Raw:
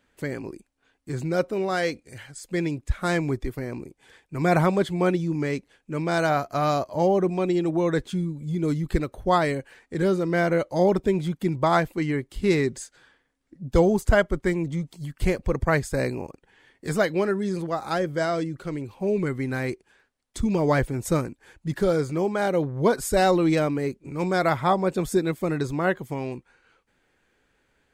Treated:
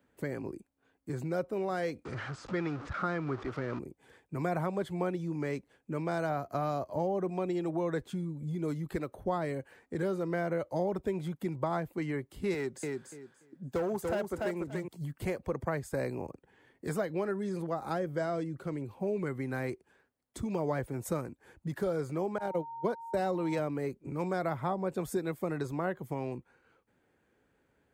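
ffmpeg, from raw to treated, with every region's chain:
-filter_complex "[0:a]asettb=1/sr,asplit=3[s0][s1][s2];[s0]atrim=end=2.054[s3];[s1]atrim=start=2.05:end=3.79,asetpts=PTS-STARTPTS,afade=t=in:d=0.004:c=qsin,afade=t=out:st=1.736:d=0.004:c=qsin,aeval=exprs='val(0)+0.5*0.0211*sgn(val(0))':c=same,lowpass=f=5500:w=0.5412,lowpass=f=5500:w=1.3066,equalizer=f=1300:w=3.1:g=11.5[s4];[s2]atrim=start=3.786[s5];[s3][s4]acrossfade=d=0.004:c1=hsin:c2=qsin[s6];[s6][s5]acrossfade=d=0.004:c1=qsin:c2=hsin,asettb=1/sr,asplit=3[s7][s8][s9];[s7]atrim=end=12.544[s10];[s8]atrim=start=12.54:end=14.88,asetpts=PTS-STARTPTS,afade=t=in:d=0.004:c=qsin,afade=t=out:st=2.336:d=0.004:c=qsin,highpass=f=300:p=1,asoftclip=type=hard:threshold=0.106,aecho=1:1:289|578|867:0.562|0.09|0.0144,atrim=end_sample=103194[s11];[s9]atrim=start=14.876[s12];[s10][s11]acrossfade=d=0.004:c1=hsin:c2=qsin[s13];[s13][s12]acrossfade=d=0.004:c1=qsin:c2=hsin,asettb=1/sr,asplit=3[s14][s15][s16];[s14]atrim=end=22.384[s17];[s15]atrim=start=22.38:end=23.59,asetpts=PTS-STARTPTS,afade=t=in:d=0.004:c=qsin,afade=t=out:st=1.206:d=0.004:c=qsin,highpass=59,agate=range=0.02:threshold=0.0708:ratio=16:release=100:detection=peak,aeval=exprs='val(0)+0.0178*sin(2*PI*920*n/s)':c=same[s18];[s16]atrim=start=23.586[s19];[s17][s18]acrossfade=d=0.004:c1=hsin:c2=qsin[s20];[s20][s19]acrossfade=d=0.004:c1=qsin:c2=hsin,highpass=72,equalizer=f=4400:w=0.31:g=-11.5,acrossover=split=110|530[s21][s22][s23];[s21]acompressor=threshold=0.00355:ratio=4[s24];[s22]acompressor=threshold=0.0141:ratio=4[s25];[s23]acompressor=threshold=0.0224:ratio=4[s26];[s24][s25][s26]amix=inputs=3:normalize=0"

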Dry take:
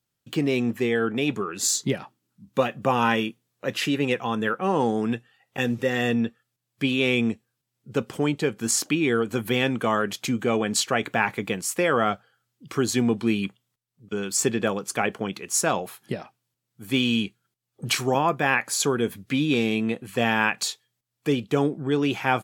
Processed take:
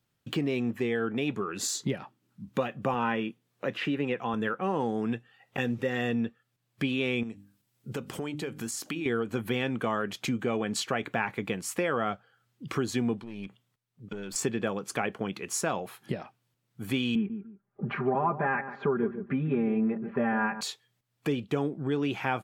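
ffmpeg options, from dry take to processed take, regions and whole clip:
-filter_complex "[0:a]asettb=1/sr,asplit=3[s0][s1][s2];[s0]atrim=end=2.944[s3];[s1]atrim=start=2.94:end=4.34,asetpts=PTS-STARTPTS,afade=t=in:d=0.004:c=qsin,afade=t=out:st=1.396:d=0.004:c=qsin,highpass=110,acrossover=split=3200[s4][s5];[s5]acompressor=threshold=0.00398:ratio=4:attack=1:release=60[s6];[s4][s6]amix=inputs=2:normalize=0[s7];[s2]atrim=start=4.336[s8];[s3][s7]acrossfade=d=0.004:c1=hsin:c2=qsin[s9];[s9][s8]acrossfade=d=0.004:c1=qsin:c2=hsin,asettb=1/sr,asplit=3[s10][s11][s12];[s10]atrim=end=7.234[s13];[s11]atrim=start=7.23:end=9.06,asetpts=PTS-STARTPTS,afade=t=in:d=0.004:c=qsin,afade=t=out:st=1.826:d=0.004:c=qsin,aemphasis=mode=production:type=cd,bandreject=f=50:t=h:w=6,bandreject=f=100:t=h:w=6,bandreject=f=150:t=h:w=6,bandreject=f=200:t=h:w=6,bandreject=f=250:t=h:w=6,bandreject=f=300:t=h:w=6,acompressor=threshold=0.0126:ratio=2:attack=3.2:release=140:knee=1:detection=peak[s14];[s12]atrim=start=9.056[s15];[s13][s14]acrossfade=d=0.004:c1=hsin:c2=qsin[s16];[s16][s15]acrossfade=d=0.004:c1=qsin:c2=hsin,asettb=1/sr,asplit=3[s17][s18][s19];[s17]atrim=end=13.194[s20];[s18]atrim=start=13.19:end=14.36,asetpts=PTS-STARTPTS,afade=t=in:d=0.004:c=qsin,afade=t=out:st=1.166:d=0.004:c=qsin,aeval=exprs='(tanh(8.91*val(0)+0.5)-tanh(0.5))/8.91':c=same,acompressor=threshold=0.0126:ratio=4:attack=3.2:release=140:knee=1:detection=peak[s21];[s19]atrim=start=14.356[s22];[s20][s21]acrossfade=d=0.004:c1=hsin:c2=qsin[s23];[s23][s22]acrossfade=d=0.004:c1=qsin:c2=hsin,asettb=1/sr,asplit=3[s24][s25][s26];[s24]atrim=end=17.154[s27];[s25]atrim=start=17.15:end=20.61,asetpts=PTS-STARTPTS,afade=t=in:d=0.004:c=qsin,afade=t=out:st=3.456:d=0.004:c=qsin,lowpass=f=1700:w=0.5412,lowpass=f=1700:w=1.3066,aecho=1:1:5:0.99,atrim=end_sample=152586,asplit=2[s28][s29];[s29]adelay=146,lowpass=f=970:p=1,volume=0.251,asplit=2[s30][s31];[s31]adelay=146,lowpass=f=970:p=1,volume=0.16[s32];[s28][s30][s32]amix=inputs=3:normalize=0,atrim=end_sample=152586[s33];[s26]atrim=start=20.606[s34];[s27][s33]acrossfade=d=0.004:c1=hsin:c2=qsin[s35];[s35][s34]acrossfade=d=0.004:c1=qsin:c2=hsin,bass=f=250:g=1,treble=f=4000:g=-7,acompressor=threshold=0.01:ratio=2,volume=1.78"

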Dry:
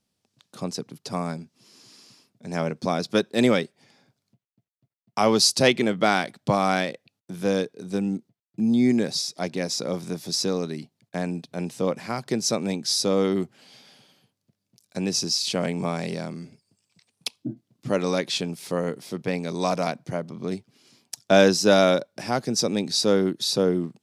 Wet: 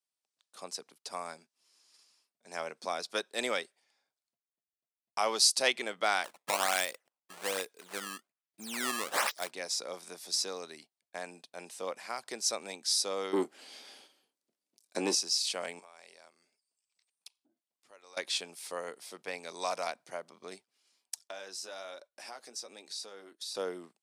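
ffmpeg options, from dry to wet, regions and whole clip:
-filter_complex "[0:a]asettb=1/sr,asplit=3[s0][s1][s2];[s0]atrim=end=6.244[s3];[s1]atrim=start=6.24:end=9.51,asetpts=PTS-STARTPTS,afade=t=in:d=0.004:c=qsin,afade=t=out:st=3.266:d=0.004:c=qsin,highshelf=f=3900:g=10,acrusher=samples=17:mix=1:aa=0.000001:lfo=1:lforange=27.2:lforate=1.2[s4];[s2]atrim=start=9.506[s5];[s3][s4]acrossfade=d=0.004:c1=hsin:c2=qsin[s6];[s6][s5]acrossfade=d=0.004:c1=qsin:c2=hsin,asettb=1/sr,asplit=3[s7][s8][s9];[s7]atrim=end=13.334[s10];[s8]atrim=start=13.33:end=15.15,asetpts=PTS-STARTPTS,afade=t=in:d=0.004:c=qsin,afade=t=out:st=1.816:d=0.004:c=qsin,equalizer=f=310:t=o:w=1.2:g=14,acontrast=54,asplit=2[s11][s12];[s12]adelay=26,volume=0.237[s13];[s11][s13]amix=inputs=2:normalize=0,atrim=end_sample=80262[s14];[s9]atrim=start=15.146[s15];[s10][s14]acrossfade=d=0.004:c1=hsin:c2=qsin[s16];[s16][s15]acrossfade=d=0.004:c1=qsin:c2=hsin,asettb=1/sr,asplit=3[s17][s18][s19];[s17]atrim=end=15.794[s20];[s18]atrim=start=15.79:end=18.17,asetpts=PTS-STARTPTS,afade=t=in:d=0.004:c=qsin,afade=t=out:st=2.376:d=0.004:c=qsin,highpass=f=430:p=1,acompressor=threshold=0.00891:ratio=8:attack=3.2:release=140:knee=1:detection=peak[s21];[s19]atrim=start=18.166[s22];[s20][s21]acrossfade=d=0.004:c1=hsin:c2=qsin[s23];[s23][s22]acrossfade=d=0.004:c1=qsin:c2=hsin,asettb=1/sr,asplit=3[s24][s25][s26];[s24]atrim=end=21.234[s27];[s25]atrim=start=21.23:end=23.55,asetpts=PTS-STARTPTS,afade=t=in:d=0.004:c=qsin,afade=t=out:st=2.316:d=0.004:c=qsin,equalizer=f=120:w=1.4:g=-9,acompressor=threshold=0.0398:ratio=4:attack=3.2:release=140:knee=1:detection=peak,flanger=delay=1.7:depth=6.5:regen=-45:speed=1.2:shape=triangular[s28];[s26]atrim=start=23.546[s29];[s27][s28]acrossfade=d=0.004:c1=hsin:c2=qsin[s30];[s30][s29]acrossfade=d=0.004:c1=qsin:c2=hsin,highpass=690,agate=range=0.355:threshold=0.00316:ratio=16:detection=peak,equalizer=f=8800:w=2.8:g=6.5,volume=0.501"

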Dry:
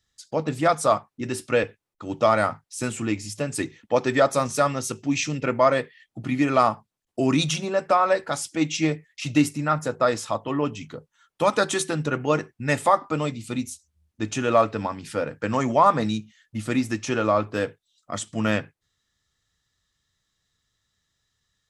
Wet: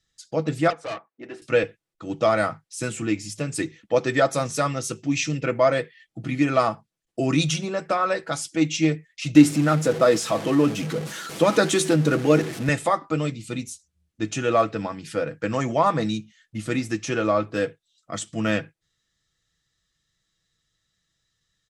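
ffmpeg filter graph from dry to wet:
-filter_complex "[0:a]asettb=1/sr,asplit=3[s0][s1][s2];[s0]atrim=end=0.704[s3];[s1]atrim=start=0.7:end=1.42,asetpts=PTS-STARTPTS,afade=t=in:d=0.004:c=qsin,afade=t=out:st=0.716:d=0.004:c=qsin,acrossover=split=280 2400:gain=0.0891 1 0.141[s4][s5][s6];[s4][s5][s6]amix=inputs=3:normalize=0,aeval=exprs='(tanh(22.4*val(0)+0.55)-tanh(0.55))/22.4':c=same,highpass=110,lowpass=7300[s7];[s2]atrim=start=1.416[s8];[s3][s7]acrossfade=d=0.004:c1=hsin:c2=qsin[s9];[s9][s8]acrossfade=d=0.004:c1=qsin:c2=hsin,asettb=1/sr,asplit=3[s10][s11][s12];[s10]atrim=end=9.354[s13];[s11]atrim=start=9.35:end=12.69,asetpts=PTS-STARTPTS,afade=t=in:d=0.004:c=qsin,afade=t=out:st=3.336:d=0.004:c=qsin,aeval=exprs='val(0)+0.5*0.0376*sgn(val(0))':c=same,highpass=210,lowshelf=f=380:g=9.5[s14];[s12]atrim=start=12.686[s15];[s13][s14]acrossfade=d=0.004:c1=hsin:c2=qsin[s16];[s16][s15]acrossfade=d=0.004:c1=qsin:c2=hsin,lowpass=11000,equalizer=f=950:w=2.3:g=-6,aecho=1:1:6.1:0.41"

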